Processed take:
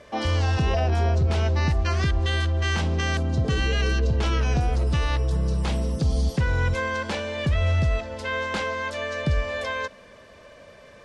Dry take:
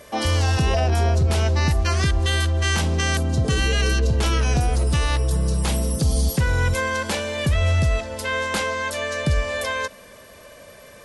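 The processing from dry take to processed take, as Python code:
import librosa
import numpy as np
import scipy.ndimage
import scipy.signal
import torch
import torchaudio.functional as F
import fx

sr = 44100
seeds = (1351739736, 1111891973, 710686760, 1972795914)

y = fx.air_absorb(x, sr, metres=110.0)
y = F.gain(torch.from_numpy(y), -2.5).numpy()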